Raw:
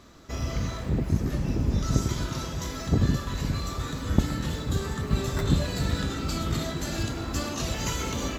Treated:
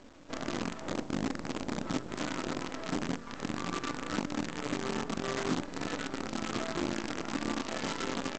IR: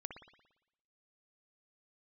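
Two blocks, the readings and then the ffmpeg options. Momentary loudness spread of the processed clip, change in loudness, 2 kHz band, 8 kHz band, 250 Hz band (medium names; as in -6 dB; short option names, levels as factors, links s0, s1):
3 LU, -7.0 dB, -1.0 dB, -7.5 dB, -4.5 dB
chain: -filter_complex "[0:a]aecho=1:1:40|63:0.422|0.211,adynamicsmooth=sensitivity=7:basefreq=560,highpass=f=200:w=0.5412,highpass=f=200:w=1.3066,equalizer=f=290:t=q:w=4:g=8,equalizer=f=2500:t=q:w=4:g=-5,equalizer=f=3900:t=q:w=4:g=-6,lowpass=f=5100:w=0.5412,lowpass=f=5100:w=1.3066,aphaser=in_gain=1:out_gain=1:delay=1.9:decay=0.35:speed=1.6:type=triangular,acompressor=threshold=0.0224:ratio=5,asplit=2[s0][s1];[s1]adelay=23,volume=0.562[s2];[s0][s2]amix=inputs=2:normalize=0,aresample=16000,acrusher=bits=6:dc=4:mix=0:aa=0.000001,aresample=44100"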